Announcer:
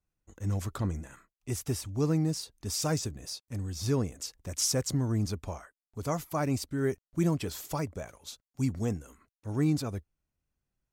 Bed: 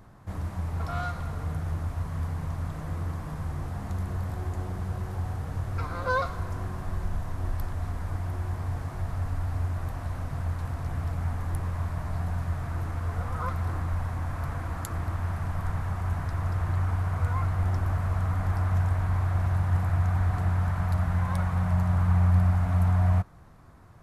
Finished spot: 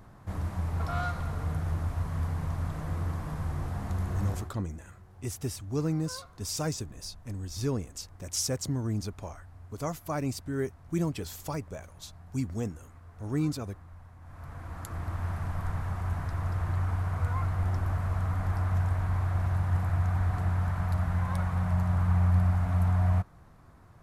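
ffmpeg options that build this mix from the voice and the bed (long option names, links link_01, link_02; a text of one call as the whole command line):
ffmpeg -i stem1.wav -i stem2.wav -filter_complex "[0:a]adelay=3750,volume=-2dB[link_01];[1:a]volume=17.5dB,afade=type=out:start_time=4.3:duration=0.22:silence=0.1,afade=type=in:start_time=14.2:duration=1.05:silence=0.133352[link_02];[link_01][link_02]amix=inputs=2:normalize=0" out.wav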